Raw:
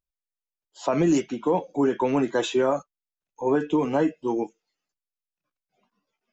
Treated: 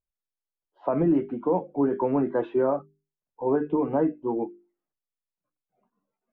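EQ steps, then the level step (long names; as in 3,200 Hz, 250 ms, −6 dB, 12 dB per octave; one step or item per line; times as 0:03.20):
low-pass filter 1,200 Hz 12 dB per octave
high-frequency loss of the air 270 metres
mains-hum notches 50/100/150/200/250/300/350/400 Hz
0.0 dB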